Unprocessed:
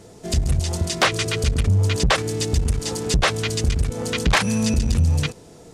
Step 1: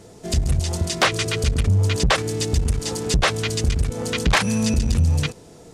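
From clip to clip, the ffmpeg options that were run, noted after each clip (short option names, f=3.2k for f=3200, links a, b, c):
-af anull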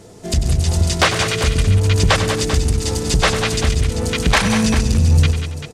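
-af "aecho=1:1:96|144|183|194|278|391:0.299|0.106|0.211|0.335|0.1|0.299,volume=3dB"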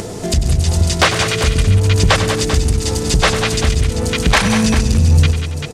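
-af "acompressor=mode=upward:threshold=-17dB:ratio=2.5,volume=2dB"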